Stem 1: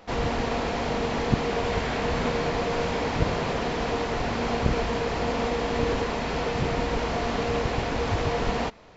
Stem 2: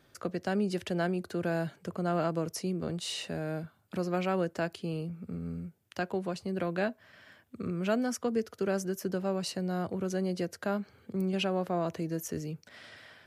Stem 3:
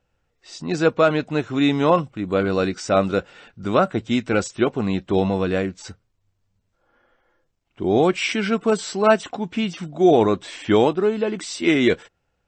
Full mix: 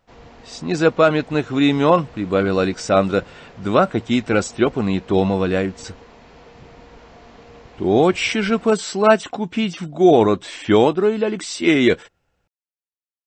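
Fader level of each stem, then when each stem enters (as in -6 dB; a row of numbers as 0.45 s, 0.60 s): -17.5 dB, mute, +2.5 dB; 0.00 s, mute, 0.00 s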